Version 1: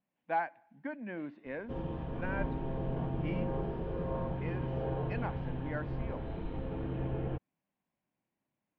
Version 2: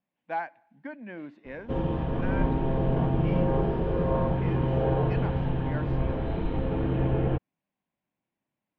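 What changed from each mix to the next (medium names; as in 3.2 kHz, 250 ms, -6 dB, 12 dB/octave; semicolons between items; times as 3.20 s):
speech: remove distance through air 140 m; background +10.0 dB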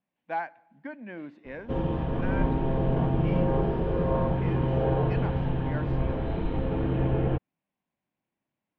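reverb: on, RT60 1.2 s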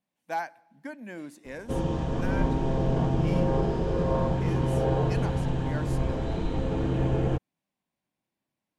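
master: remove low-pass 3.1 kHz 24 dB/octave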